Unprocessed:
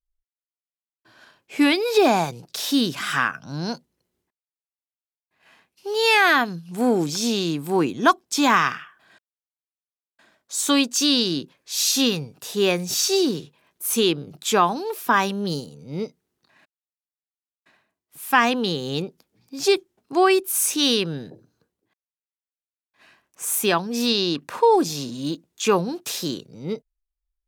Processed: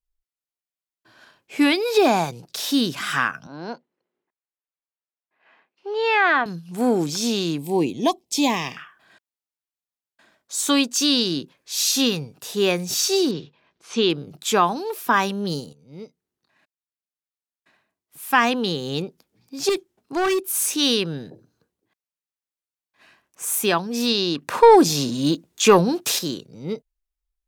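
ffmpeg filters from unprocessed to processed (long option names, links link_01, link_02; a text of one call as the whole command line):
ffmpeg -i in.wav -filter_complex "[0:a]asettb=1/sr,asplit=3[link_01][link_02][link_03];[link_01]atrim=end=3.474[link_04];[link_02]atrim=start=3.47:end=6.46,asetpts=PTS-STARTPTS,afade=type=in:duration=0.004:curve=qsin,afade=type=out:start_time=2.986:duration=0.004:curve=qsin,highpass=320,lowpass=2300[link_05];[link_03]atrim=start=6.456[link_06];[link_04][link_05]acrossfade=duration=0.004:curve1=hsin:curve2=qsin[link_07];[link_07][link_06]acrossfade=duration=0.004:curve1=qsin:curve2=hsin,asettb=1/sr,asplit=3[link_08][link_09][link_10];[link_08]atrim=end=7.584[link_11];[link_09]atrim=start=7.58:end=8.77,asetpts=PTS-STARTPTS,afade=type=in:duration=0.004:curve=qsin,afade=type=out:start_time=1.186:duration=0.004:curve=qsin,asuperstop=centerf=1400:order=4:qfactor=1.1[link_12];[link_10]atrim=start=8.766[link_13];[link_11][link_12]acrossfade=duration=0.004:curve1=hsin:curve2=qsin[link_14];[link_14][link_13]acrossfade=duration=0.004:curve1=qsin:curve2=hsin,asettb=1/sr,asplit=3[link_15][link_16][link_17];[link_15]atrim=end=13.314[link_18];[link_16]atrim=start=13.31:end=14.1,asetpts=PTS-STARTPTS,afade=type=in:duration=0.004:curve=qsin,afade=type=out:start_time=0.786:duration=0.004:curve=qsin,lowpass=frequency=5100:width=0.5412,lowpass=frequency=5100:width=1.3066[link_19];[link_17]atrim=start=14.096[link_20];[link_18][link_19]acrossfade=duration=0.004:curve1=hsin:curve2=qsin[link_21];[link_21][link_20]acrossfade=duration=0.004:curve1=qsin:curve2=hsin,asettb=1/sr,asplit=3[link_22][link_23][link_24];[link_22]atrim=end=19.694[link_25];[link_23]atrim=start=19.69:end=20.71,asetpts=PTS-STARTPTS,afade=type=in:duration=0.004:curve=qsin,afade=type=out:start_time=1.016:duration=0.004:curve=qsin,asoftclip=type=hard:threshold=-18dB[link_26];[link_24]atrim=start=20.706[link_27];[link_25][link_26]acrossfade=duration=0.004:curve1=hsin:curve2=qsin[link_28];[link_28][link_27]acrossfade=duration=0.004:curve1=qsin:curve2=hsin,asettb=1/sr,asplit=3[link_29][link_30][link_31];[link_29]atrim=end=24.474[link_32];[link_30]atrim=start=24.47:end=26.19,asetpts=PTS-STARTPTS,afade=type=in:duration=0.004:curve=qsin,afade=type=out:start_time=1.716:duration=0.004:curve=qsin,acontrast=71[link_33];[link_31]atrim=start=26.186[link_34];[link_32][link_33]acrossfade=duration=0.004:curve1=hsin:curve2=qsin[link_35];[link_35][link_34]acrossfade=duration=0.004:curve1=qsin:curve2=hsin,asplit=2[link_36][link_37];[link_36]atrim=end=15.73,asetpts=PTS-STARTPTS,afade=type=out:start_time=15.726:duration=0.004:curve=hsin:silence=0.237137[link_38];[link_37]atrim=start=15.73,asetpts=PTS-STARTPTS,afade=type=in:duration=2.73:silence=0.237137[link_39];[link_38][link_39]concat=n=2:v=0:a=1" out.wav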